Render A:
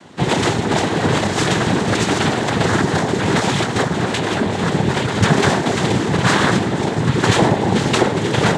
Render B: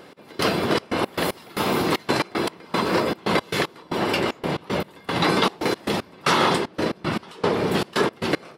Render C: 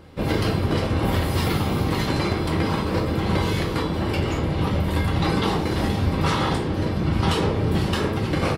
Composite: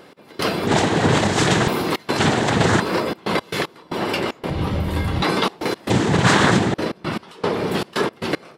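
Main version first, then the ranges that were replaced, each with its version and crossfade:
B
0.67–1.68 s: from A
2.18–2.80 s: from A
4.50–5.22 s: from C
5.90–6.74 s: from A

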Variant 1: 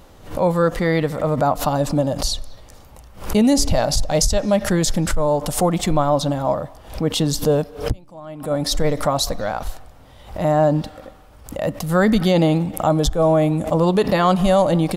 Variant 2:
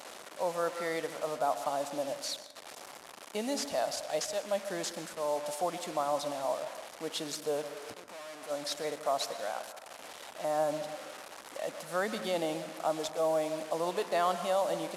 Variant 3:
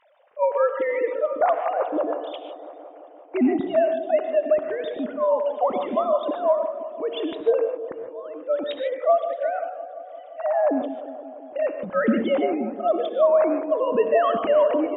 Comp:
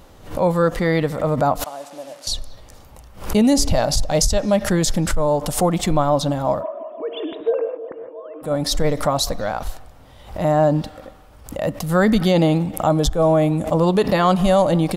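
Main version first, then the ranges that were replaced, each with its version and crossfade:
1
1.64–2.27 s: from 2
6.61–8.44 s: from 3, crossfade 0.06 s

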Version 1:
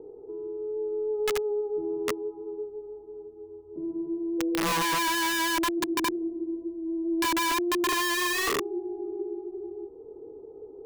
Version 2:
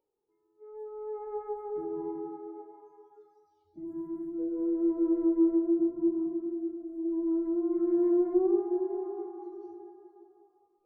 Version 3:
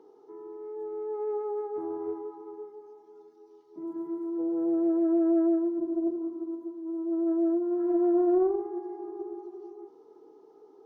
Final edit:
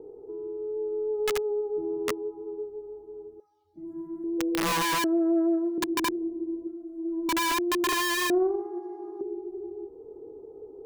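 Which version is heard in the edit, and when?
1
3.40–4.24 s: from 2
5.04–5.78 s: from 3
6.67–7.29 s: from 2
8.30–9.21 s: from 3

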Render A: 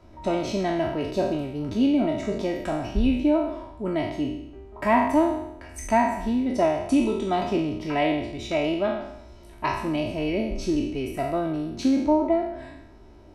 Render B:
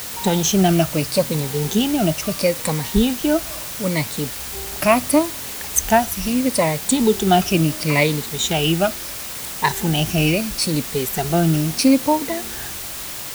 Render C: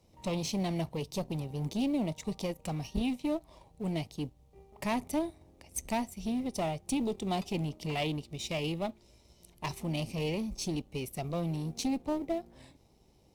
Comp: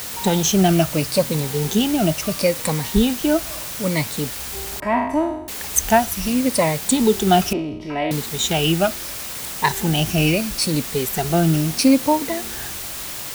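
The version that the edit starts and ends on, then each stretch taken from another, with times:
B
4.80–5.48 s: from A
7.53–8.11 s: from A
not used: C

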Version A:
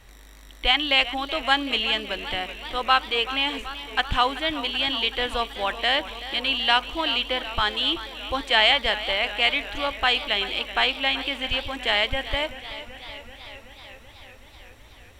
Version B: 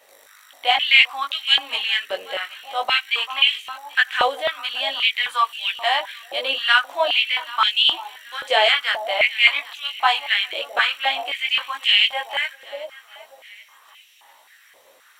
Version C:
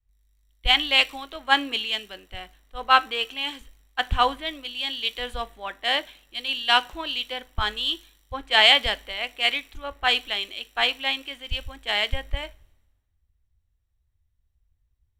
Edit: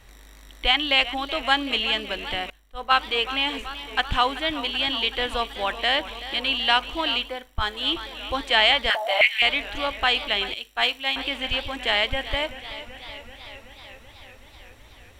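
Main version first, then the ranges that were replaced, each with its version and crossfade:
A
2.50–2.92 s: from C
7.29–7.76 s: from C, crossfade 0.24 s
8.90–9.42 s: from B
10.54–11.16 s: from C

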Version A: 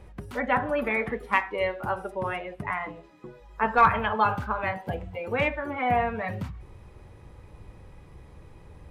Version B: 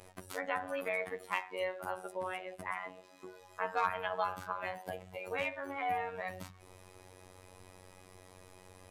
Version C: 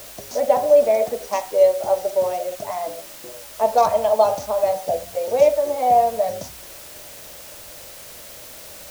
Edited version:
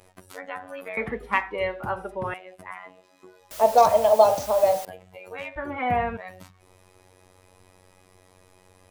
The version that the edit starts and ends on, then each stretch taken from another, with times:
B
0.97–2.34 s: from A
3.51–4.85 s: from C
5.56–6.17 s: from A

